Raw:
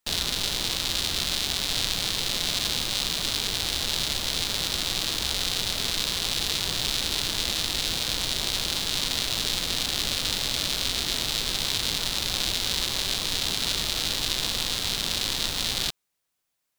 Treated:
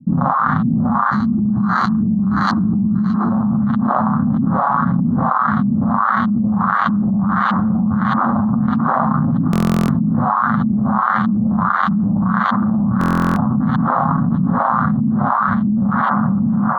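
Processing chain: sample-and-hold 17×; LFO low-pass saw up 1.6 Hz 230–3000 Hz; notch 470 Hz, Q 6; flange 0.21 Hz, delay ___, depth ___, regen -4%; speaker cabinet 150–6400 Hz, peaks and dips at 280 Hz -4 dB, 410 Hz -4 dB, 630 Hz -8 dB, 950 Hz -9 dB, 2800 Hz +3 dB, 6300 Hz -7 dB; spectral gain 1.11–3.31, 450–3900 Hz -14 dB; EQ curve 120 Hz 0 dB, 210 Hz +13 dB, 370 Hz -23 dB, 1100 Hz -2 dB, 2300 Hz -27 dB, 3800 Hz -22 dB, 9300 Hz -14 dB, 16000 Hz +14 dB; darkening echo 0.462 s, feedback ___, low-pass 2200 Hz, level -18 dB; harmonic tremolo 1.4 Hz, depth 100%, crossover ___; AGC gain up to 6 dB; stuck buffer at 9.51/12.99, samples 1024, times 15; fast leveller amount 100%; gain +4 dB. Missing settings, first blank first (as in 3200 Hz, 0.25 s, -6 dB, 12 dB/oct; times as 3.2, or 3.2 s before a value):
7 ms, 3.3 ms, 81%, 600 Hz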